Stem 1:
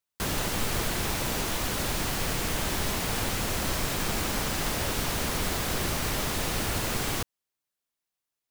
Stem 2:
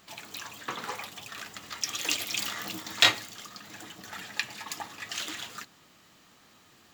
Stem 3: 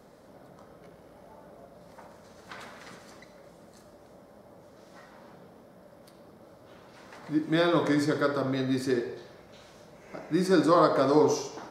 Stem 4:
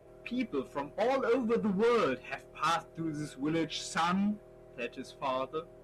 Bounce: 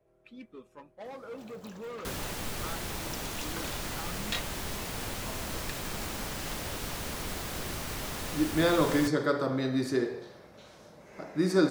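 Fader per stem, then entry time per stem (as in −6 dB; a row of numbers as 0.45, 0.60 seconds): −7.5, −15.0, −1.0, −14.0 decibels; 1.85, 1.30, 1.05, 0.00 seconds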